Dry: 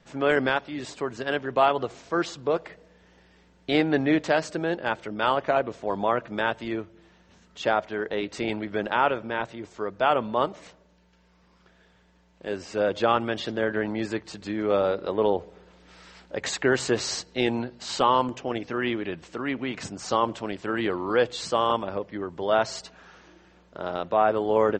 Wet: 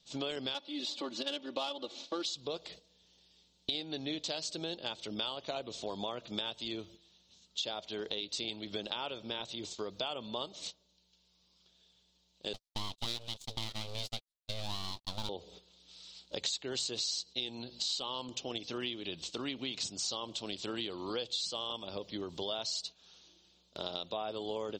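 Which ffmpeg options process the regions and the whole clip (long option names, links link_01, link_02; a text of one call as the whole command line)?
ffmpeg -i in.wav -filter_complex "[0:a]asettb=1/sr,asplit=3[link_01][link_02][link_03];[link_01]atrim=end=0.544[link_04];[link_02]atrim=start=0.54:end=2.25,asetpts=PTS-STARTPTS,afade=type=in:duration=0.004:curve=qsin,afade=type=out:start_time=1.706:duration=0.004:curve=qsin,highpass=210,aecho=1:1:3.5:0.92,atrim=end_sample=75411,adynamicsmooth=sensitivity=1.5:basefreq=3400[link_05];[link_03]atrim=start=2.246[link_06];[link_04][link_05]acrossfade=duration=0.004:curve1=hsin:curve2=qsin[link_07];[link_07][link_06]acrossfade=duration=0.004:curve1=qsin:curve2=hsin,asettb=1/sr,asplit=3[link_08][link_09][link_10];[link_08]atrim=end=12.534[link_11];[link_09]atrim=start=12.53:end=15.29,asetpts=PTS-STARTPTS,afade=type=in:duration=0.004:curve=qsin,afade=type=out:start_time=2.756:duration=0.004:curve=qsin,agate=range=-57dB:threshold=-32dB:ratio=16:release=100:detection=peak,aeval=exprs='abs(val(0))':channel_layout=same[link_12];[link_10]atrim=start=15.286[link_13];[link_11][link_12]acrossfade=duration=0.004:curve1=hsin:curve2=qsin[link_14];[link_14][link_13]acrossfade=duration=0.004:curve1=qsin:curve2=hsin,agate=range=-12dB:threshold=-46dB:ratio=16:detection=peak,highshelf=frequency=2600:width_type=q:width=3:gain=13.5,acompressor=threshold=-31dB:ratio=6,volume=-4dB" out.wav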